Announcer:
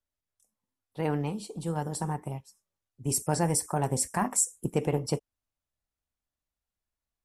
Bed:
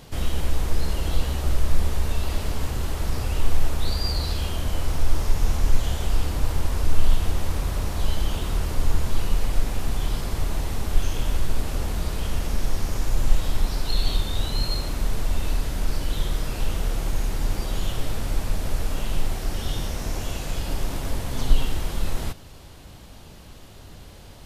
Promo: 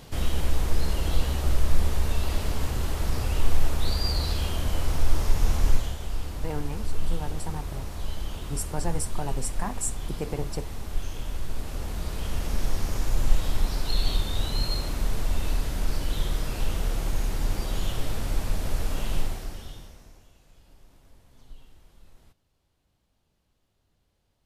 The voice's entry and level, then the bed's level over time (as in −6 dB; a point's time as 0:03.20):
5.45 s, −5.0 dB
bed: 0:05.71 −1 dB
0:05.97 −8.5 dB
0:11.34 −8.5 dB
0:12.61 −2 dB
0:19.20 −2 dB
0:20.32 −28.5 dB